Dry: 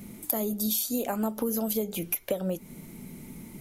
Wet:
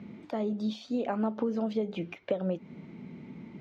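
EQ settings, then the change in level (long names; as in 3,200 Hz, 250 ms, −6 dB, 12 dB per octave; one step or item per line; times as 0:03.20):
band-pass filter 120–3,900 Hz
high-frequency loss of the air 190 metres
0.0 dB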